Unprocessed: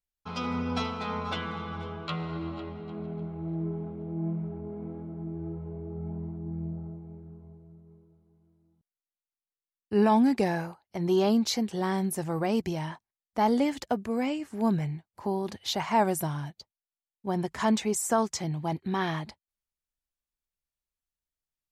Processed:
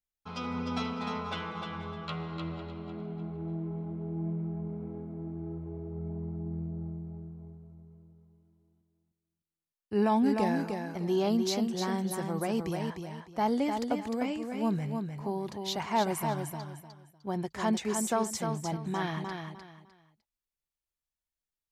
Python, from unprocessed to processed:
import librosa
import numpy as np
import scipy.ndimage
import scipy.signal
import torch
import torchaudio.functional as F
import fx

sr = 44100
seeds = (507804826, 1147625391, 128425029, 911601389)

y = fx.echo_feedback(x, sr, ms=303, feedback_pct=26, wet_db=-5.5)
y = y * librosa.db_to_amplitude(-4.0)